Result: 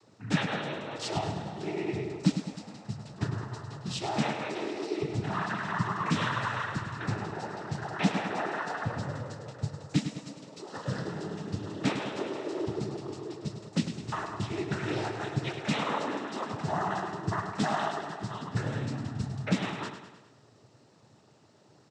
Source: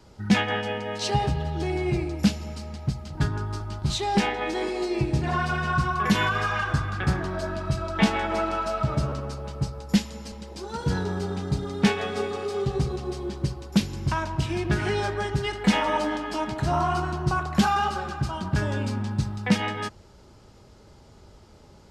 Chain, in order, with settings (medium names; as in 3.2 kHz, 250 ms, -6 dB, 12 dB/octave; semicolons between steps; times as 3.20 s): noise-vocoded speech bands 12; feedback delay 103 ms, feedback 54%, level -9 dB; trim -6.5 dB